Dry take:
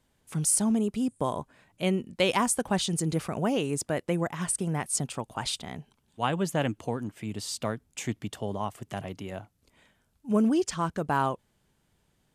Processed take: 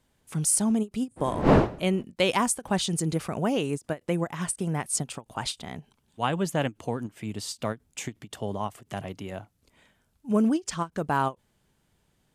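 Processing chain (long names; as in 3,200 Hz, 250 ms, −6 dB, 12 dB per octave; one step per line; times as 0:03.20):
0:01.16–0:02.02: wind on the microphone 480 Hz −34 dBFS
every ending faded ahead of time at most 430 dB per second
level +1 dB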